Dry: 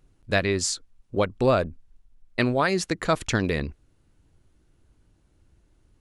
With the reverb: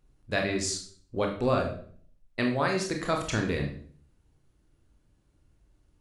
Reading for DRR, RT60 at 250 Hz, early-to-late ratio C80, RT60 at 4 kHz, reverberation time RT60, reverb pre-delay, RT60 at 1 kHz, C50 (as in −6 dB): 1.5 dB, 0.65 s, 11.0 dB, 0.45 s, 0.50 s, 21 ms, 0.45 s, 7.5 dB